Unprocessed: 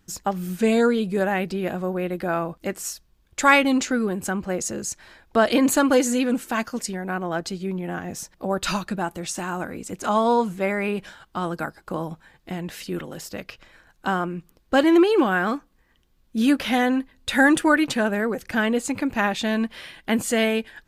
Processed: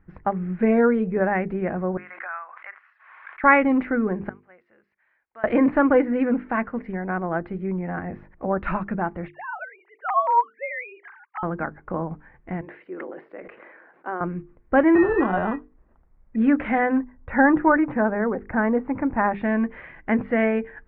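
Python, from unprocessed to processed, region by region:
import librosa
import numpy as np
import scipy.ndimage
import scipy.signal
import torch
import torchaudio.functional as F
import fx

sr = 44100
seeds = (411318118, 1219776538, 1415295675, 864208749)

y = fx.chain(x, sr, fx.highpass(hz=1200.0, slope=24),
    fx.high_shelf(hz=2900.0, db=-10.5),
    fx.pre_swell(db_per_s=46.0), at=(1.97, 3.44))
y = fx.chain(y, sr, fx.bandpass_q(hz=6100.0, q=1.8),
    fx.air_absorb(metres=140.0), at=(4.29, 5.44))
y = fx.chain(y, sr, fx.sine_speech(),
    fx.highpass(hz=730.0, slope=24), at=(9.28, 11.43))
y = fx.chain(y, sr, fx.ladder_highpass(hz=300.0, resonance_pct=40),
    fx.sustainer(db_per_s=31.0), at=(12.61, 14.21))
y = fx.chain(y, sr, fx.peak_eq(hz=730.0, db=-3.0, octaves=2.9),
    fx.sample_hold(seeds[0], rate_hz=2200.0, jitter_pct=0), at=(14.95, 16.36))
y = fx.chain(y, sr, fx.lowpass(hz=1600.0, slope=12),
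    fx.peak_eq(hz=930.0, db=4.5, octaves=0.4), at=(16.97, 19.33))
y = scipy.signal.sosfilt(scipy.signal.ellip(4, 1.0, 70, 2100.0, 'lowpass', fs=sr, output='sos'), y)
y = fx.low_shelf(y, sr, hz=91.0, db=8.5)
y = fx.hum_notches(y, sr, base_hz=50, count=9)
y = F.gain(torch.from_numpy(y), 1.0).numpy()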